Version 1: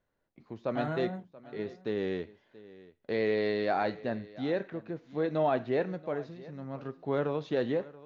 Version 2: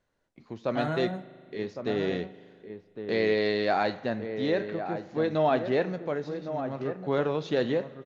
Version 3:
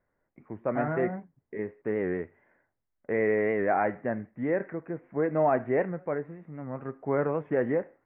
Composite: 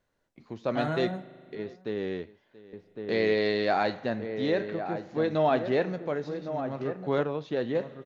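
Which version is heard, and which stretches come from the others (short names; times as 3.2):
2
1.55–2.73 from 1
7.23–7.75 from 1
not used: 3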